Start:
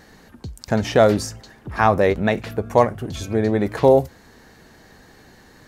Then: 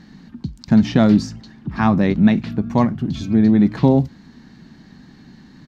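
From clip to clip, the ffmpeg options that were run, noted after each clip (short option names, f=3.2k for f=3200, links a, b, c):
-af "firequalizer=gain_entry='entry(100,0);entry(150,11);entry(240,11);entry(460,-10);entry(930,-3);entry(1500,-4);entry(4200,1);entry(9500,-18)':delay=0.05:min_phase=1"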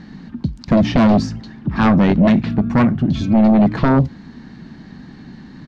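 -af "aeval=exprs='0.794*sin(PI/2*2.82*val(0)/0.794)':c=same,aemphasis=mode=reproduction:type=50fm,volume=-6.5dB"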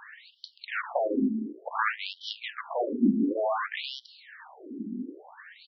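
-af "asoftclip=type=tanh:threshold=-21.5dB,afftfilt=real='re*between(b*sr/1024,270*pow(4200/270,0.5+0.5*sin(2*PI*0.56*pts/sr))/1.41,270*pow(4200/270,0.5+0.5*sin(2*PI*0.56*pts/sr))*1.41)':imag='im*between(b*sr/1024,270*pow(4200/270,0.5+0.5*sin(2*PI*0.56*pts/sr))/1.41,270*pow(4200/270,0.5+0.5*sin(2*PI*0.56*pts/sr))*1.41)':win_size=1024:overlap=0.75,volume=6dB"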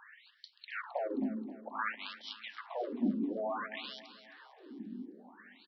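-af "aecho=1:1:265|530|795|1060:0.178|0.0854|0.041|0.0197,volume=-8.5dB"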